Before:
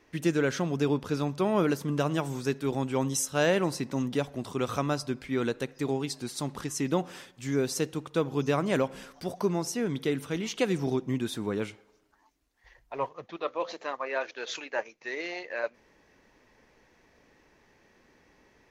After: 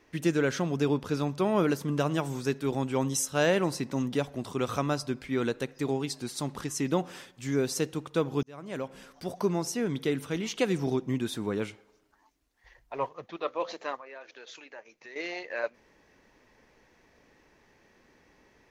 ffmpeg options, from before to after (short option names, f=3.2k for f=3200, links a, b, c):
-filter_complex "[0:a]asettb=1/sr,asplit=3[a][b][c];[a]atrim=end=13.994[d];[b]atrim=start=13.99:end=15.16,asetpts=PTS-STARTPTS,afade=t=in:d=0.004:c=qsin,afade=t=out:st=1.166:d=0.004:c=qsin,acompressor=threshold=-49dB:ratio=2.5:attack=3.2:release=140:knee=1:detection=peak[e];[c]atrim=start=15.156[f];[d][e]acrossfade=d=0.004:c1=hsin:c2=qsin[g];[g][f]acrossfade=d=0.004:c1=qsin:c2=hsin,asplit=2[h][i];[h]atrim=end=8.43,asetpts=PTS-STARTPTS,afade=t=out:st=8.426:d=0.004:c=hsin[j];[i]atrim=start=8.43,asetpts=PTS-STARTPTS,afade=t=in:d=0.98[k];[j][k]concat=n=2:v=0:a=1"